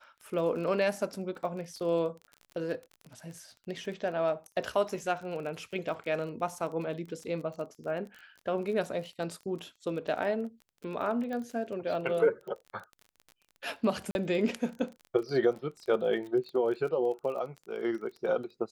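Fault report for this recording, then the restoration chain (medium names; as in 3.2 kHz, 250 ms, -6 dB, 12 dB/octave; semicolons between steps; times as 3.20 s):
crackle 30 per s -39 dBFS
11.33 s: pop -26 dBFS
14.11–14.15 s: dropout 41 ms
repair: de-click; interpolate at 14.11 s, 41 ms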